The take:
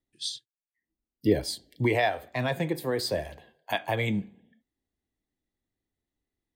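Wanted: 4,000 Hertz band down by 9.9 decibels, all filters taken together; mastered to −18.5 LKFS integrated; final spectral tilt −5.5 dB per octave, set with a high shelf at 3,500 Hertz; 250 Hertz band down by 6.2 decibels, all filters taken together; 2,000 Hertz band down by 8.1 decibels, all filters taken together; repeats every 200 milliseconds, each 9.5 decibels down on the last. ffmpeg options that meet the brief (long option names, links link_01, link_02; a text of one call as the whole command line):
ffmpeg -i in.wav -af "equalizer=frequency=250:width_type=o:gain=-9,equalizer=frequency=2000:width_type=o:gain=-6,highshelf=frequency=3500:gain=-8,equalizer=frequency=4000:width_type=o:gain=-5,aecho=1:1:200|400|600|800:0.335|0.111|0.0365|0.012,volume=14.5dB" out.wav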